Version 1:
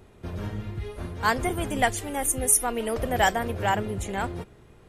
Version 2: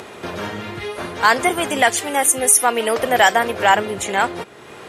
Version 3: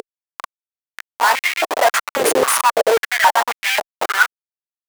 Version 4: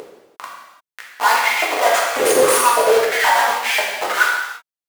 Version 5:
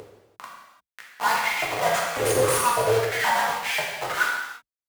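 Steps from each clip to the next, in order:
meter weighting curve A; in parallel at −1 dB: upward compression, threshold −31 dBFS; on the sum: boost into a limiter +8 dB; level −1 dB
phase shifter 0.42 Hz, delay 4.4 ms, feedback 72%; comparator with hysteresis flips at −14 dBFS; high-pass on a step sequencer 3.7 Hz 440–2,200 Hz; level −1 dB
reverb whose tail is shaped and stops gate 370 ms falling, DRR −4 dB; level −4.5 dB
sub-octave generator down 2 octaves, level −2 dB; level −7.5 dB

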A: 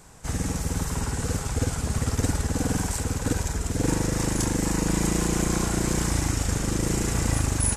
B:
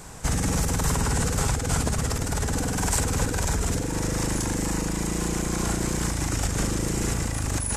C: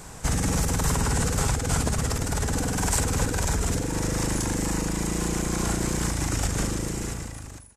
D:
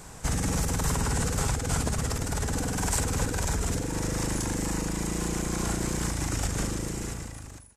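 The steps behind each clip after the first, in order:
compressor whose output falls as the input rises −29 dBFS, ratio −1; level +4 dB
fade-out on the ending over 1.27 s
surface crackle 15 per second −54 dBFS; level −3 dB

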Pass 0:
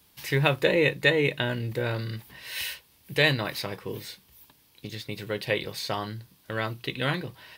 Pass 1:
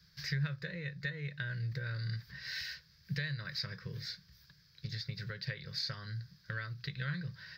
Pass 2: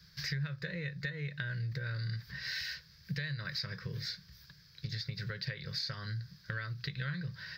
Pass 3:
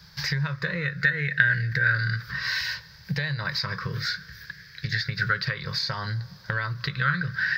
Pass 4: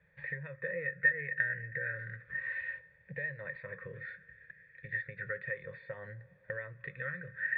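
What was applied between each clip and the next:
downward compressor 6 to 1, threshold −34 dBFS, peak gain reduction 17 dB; drawn EQ curve 110 Hz 0 dB, 170 Hz +6 dB, 240 Hz −23 dB, 540 Hz −12 dB, 790 Hz −26 dB, 1,600 Hz +3 dB, 2,900 Hz −15 dB, 4,900 Hz +5 dB, 9,400 Hz −30 dB, 15,000 Hz −18 dB; level +1 dB
downward compressor 2.5 to 1, threshold −41 dBFS, peak gain reduction 8 dB; level +5 dB
on a send at −23.5 dB: convolution reverb RT60 3.1 s, pre-delay 113 ms; on the sum: auto-filter bell 0.32 Hz 820–1,800 Hz +16 dB; level +8.5 dB
formant resonators in series e; level +1 dB

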